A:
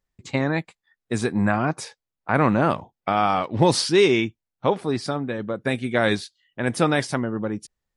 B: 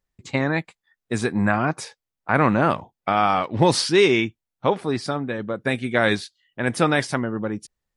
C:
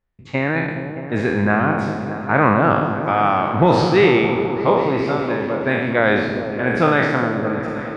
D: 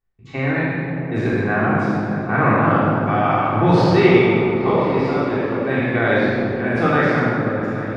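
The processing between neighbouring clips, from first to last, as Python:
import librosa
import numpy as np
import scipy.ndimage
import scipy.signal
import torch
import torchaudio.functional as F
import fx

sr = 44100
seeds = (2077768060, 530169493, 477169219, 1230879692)

y1 = fx.dynamic_eq(x, sr, hz=1800.0, q=0.81, threshold_db=-35.0, ratio=4.0, max_db=3)
y2 = fx.spec_trails(y1, sr, decay_s=1.1)
y2 = scipy.signal.sosfilt(scipy.signal.butter(2, 2500.0, 'lowpass', fs=sr, output='sos'), y2)
y2 = fx.echo_opening(y2, sr, ms=207, hz=400, octaves=1, feedback_pct=70, wet_db=-6)
y2 = y2 * librosa.db_to_amplitude(1.0)
y3 = fx.room_shoebox(y2, sr, seeds[0], volume_m3=1500.0, walls='mixed', distance_m=3.5)
y3 = y3 * librosa.db_to_amplitude(-7.5)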